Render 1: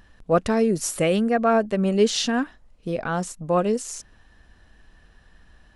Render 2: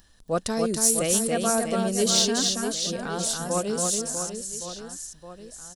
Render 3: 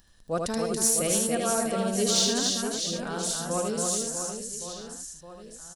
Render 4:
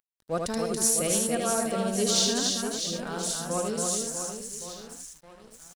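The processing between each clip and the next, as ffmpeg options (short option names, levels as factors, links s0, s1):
-af "aecho=1:1:280|644|1117|1732|2532:0.631|0.398|0.251|0.158|0.1,aexciter=amount=3.2:drive=8.1:freq=3500,volume=0.473"
-af "aecho=1:1:77:0.631,volume=0.668"
-af "aeval=exprs='sgn(val(0))*max(abs(val(0))-0.00398,0)':c=same"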